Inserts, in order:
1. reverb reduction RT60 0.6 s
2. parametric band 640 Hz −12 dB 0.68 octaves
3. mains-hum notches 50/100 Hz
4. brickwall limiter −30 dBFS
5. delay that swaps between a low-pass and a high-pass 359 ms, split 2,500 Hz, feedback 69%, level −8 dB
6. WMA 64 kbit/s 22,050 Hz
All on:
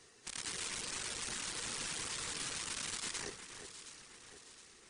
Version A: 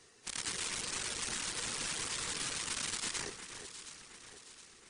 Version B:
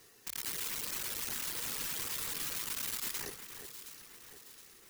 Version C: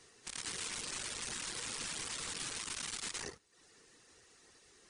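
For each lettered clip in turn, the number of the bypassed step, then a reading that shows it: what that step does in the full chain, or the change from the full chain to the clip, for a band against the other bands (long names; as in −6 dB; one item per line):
4, average gain reduction 1.5 dB
6, change in crest factor −2.5 dB
5, change in momentary loudness spread −11 LU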